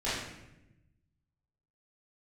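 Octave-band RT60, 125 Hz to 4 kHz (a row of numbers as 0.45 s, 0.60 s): 1.7 s, 1.4 s, 1.0 s, 0.80 s, 0.90 s, 0.70 s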